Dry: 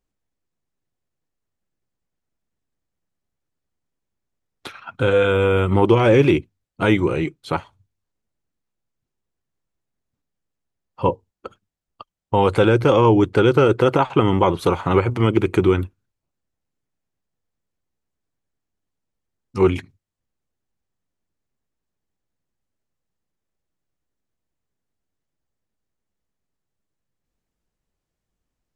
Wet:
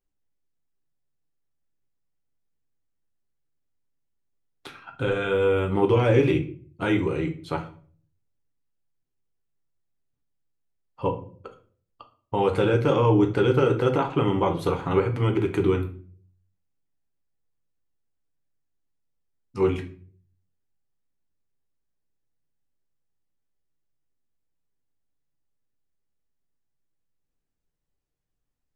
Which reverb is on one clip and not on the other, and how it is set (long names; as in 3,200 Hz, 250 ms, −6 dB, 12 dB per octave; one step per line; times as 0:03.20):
rectangular room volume 40 cubic metres, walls mixed, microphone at 0.38 metres
level −8 dB